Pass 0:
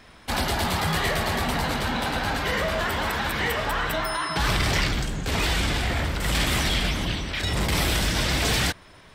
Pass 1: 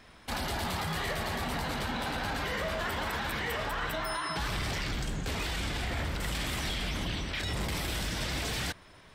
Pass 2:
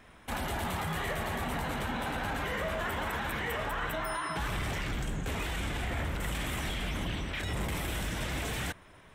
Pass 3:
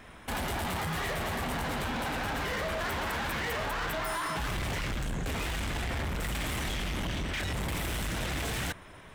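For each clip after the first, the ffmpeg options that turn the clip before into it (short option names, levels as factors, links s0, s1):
-af "alimiter=limit=0.106:level=0:latency=1:release=32,volume=0.562"
-af "equalizer=f=4700:w=2.1:g=-11.5"
-af "asoftclip=type=hard:threshold=0.0158,volume=1.88"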